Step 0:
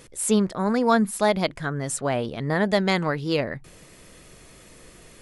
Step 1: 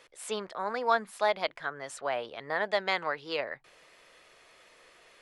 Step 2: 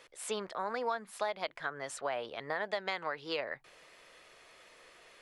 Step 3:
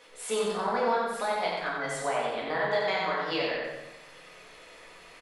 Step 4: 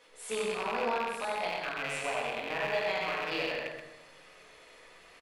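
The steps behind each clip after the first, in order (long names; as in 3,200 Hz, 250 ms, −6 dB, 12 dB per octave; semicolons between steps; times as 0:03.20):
three-way crossover with the lows and the highs turned down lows −23 dB, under 490 Hz, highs −15 dB, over 4,800 Hz; level −3.5 dB
downward compressor 6 to 1, threshold −31 dBFS, peak gain reduction 11.5 dB
repeating echo 90 ms, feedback 44%, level −4 dB; rectangular room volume 280 cubic metres, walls mixed, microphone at 1.9 metres
loose part that buzzes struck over −45 dBFS, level −20 dBFS; on a send: single-tap delay 127 ms −7.5 dB; on the sum: level −5.5 dB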